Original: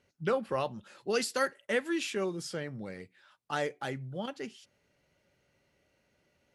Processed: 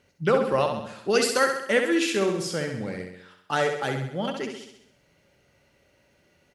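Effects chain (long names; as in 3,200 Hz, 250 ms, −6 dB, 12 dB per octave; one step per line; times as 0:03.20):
repeating echo 66 ms, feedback 55%, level −6 dB
level +7.5 dB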